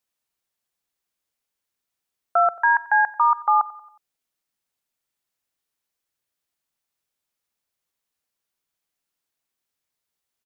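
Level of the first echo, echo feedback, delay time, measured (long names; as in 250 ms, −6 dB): −19.5 dB, 50%, 91 ms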